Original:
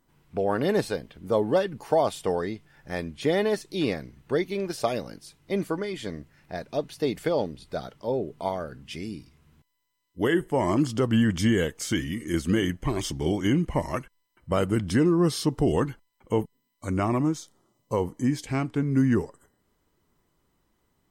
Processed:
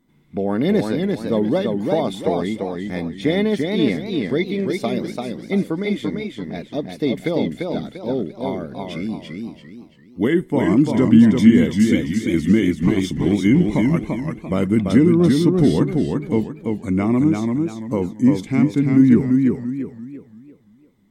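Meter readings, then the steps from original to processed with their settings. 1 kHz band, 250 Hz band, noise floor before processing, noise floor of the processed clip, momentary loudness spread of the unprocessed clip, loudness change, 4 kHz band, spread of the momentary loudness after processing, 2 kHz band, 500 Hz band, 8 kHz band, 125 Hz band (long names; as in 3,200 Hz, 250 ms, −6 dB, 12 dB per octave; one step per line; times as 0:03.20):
+0.5 dB, +11.0 dB, −73 dBFS, −50 dBFS, 13 LU, +8.0 dB, +3.5 dB, 14 LU, +4.5 dB, +4.5 dB, can't be measured, +7.5 dB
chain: hollow resonant body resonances 220/2,100/3,500 Hz, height 14 dB, ringing for 20 ms
feedback echo with a swinging delay time 341 ms, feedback 35%, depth 97 cents, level −4 dB
level −2.5 dB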